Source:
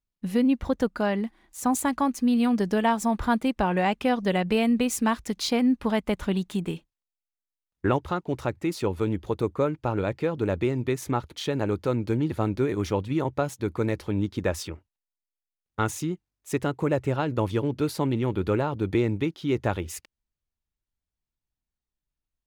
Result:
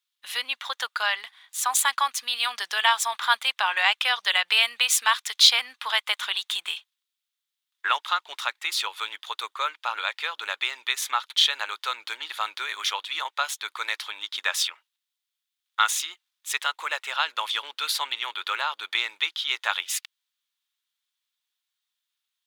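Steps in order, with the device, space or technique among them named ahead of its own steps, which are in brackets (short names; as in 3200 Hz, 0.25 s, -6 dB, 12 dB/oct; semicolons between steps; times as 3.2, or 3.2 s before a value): headphones lying on a table (HPF 1100 Hz 24 dB/oct; bell 3500 Hz +11 dB 0.55 oct); gain +8.5 dB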